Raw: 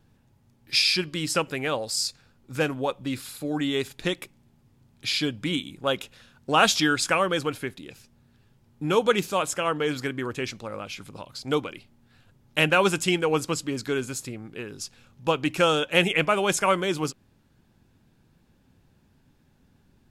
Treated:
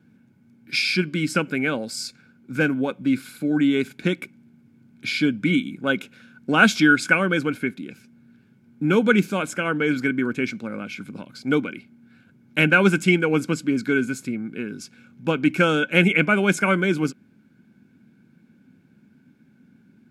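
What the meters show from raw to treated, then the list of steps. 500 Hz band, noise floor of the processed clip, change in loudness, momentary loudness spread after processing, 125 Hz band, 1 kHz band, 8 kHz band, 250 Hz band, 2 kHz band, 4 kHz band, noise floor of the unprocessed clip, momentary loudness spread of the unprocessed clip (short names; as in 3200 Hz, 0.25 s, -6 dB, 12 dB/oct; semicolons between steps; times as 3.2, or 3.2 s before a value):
+1.0 dB, -57 dBFS, +3.5 dB, 15 LU, +6.5 dB, -0.5 dB, -4.5 dB, +8.5 dB, +7.0 dB, -3.0 dB, -63 dBFS, 16 LU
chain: HPF 120 Hz; small resonant body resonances 220/1500/2200 Hz, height 18 dB, ringing for 25 ms; gain -5 dB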